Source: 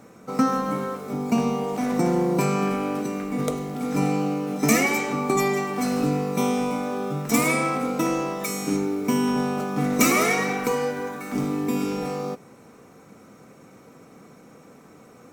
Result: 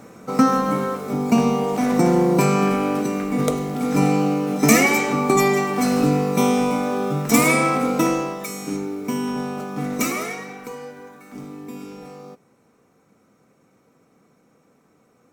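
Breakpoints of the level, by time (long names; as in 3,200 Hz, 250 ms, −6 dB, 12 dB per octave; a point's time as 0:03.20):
0:08.03 +5 dB
0:08.48 −2.5 dB
0:09.94 −2.5 dB
0:10.46 −10.5 dB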